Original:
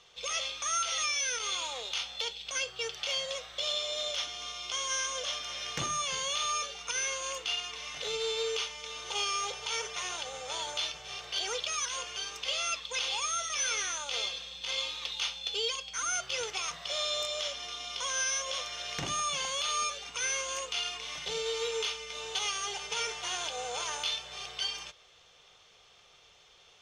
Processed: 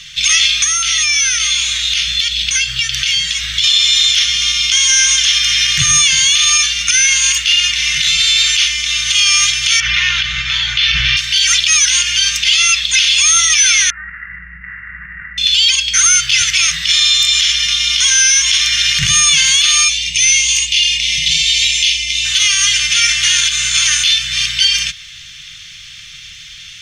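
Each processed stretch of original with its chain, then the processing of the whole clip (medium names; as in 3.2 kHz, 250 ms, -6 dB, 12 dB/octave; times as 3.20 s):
0.64–3.64 s: bass shelf 420 Hz +5.5 dB + compression 5:1, threshold -37 dBFS + echo whose repeats swap between lows and highs 229 ms, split 830 Hz, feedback 50%, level -8.5 dB
9.80–11.17 s: distance through air 290 m + level flattener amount 100%
13.90–15.38 s: sorted samples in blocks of 16 samples + compression, threshold -35 dBFS + rippled Chebyshev low-pass 2 kHz, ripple 3 dB
19.88–22.25 s: Butterworth band-stop 1.4 kHz, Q 1.1 + treble shelf 9.7 kHz -7.5 dB
whole clip: dynamic bell 180 Hz, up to -6 dB, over -60 dBFS, Q 1.3; elliptic band-stop 160–1800 Hz, stop band 60 dB; loudness maximiser +28.5 dB; trim -1 dB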